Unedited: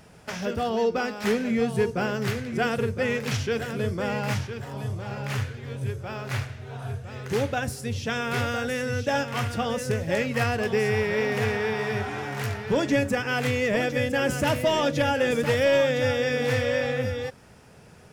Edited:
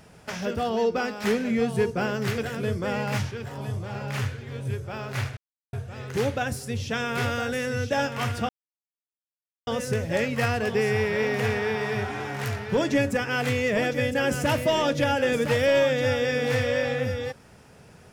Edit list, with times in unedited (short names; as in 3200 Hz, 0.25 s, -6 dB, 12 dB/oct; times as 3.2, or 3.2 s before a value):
2.38–3.54 cut
6.53–6.89 mute
9.65 insert silence 1.18 s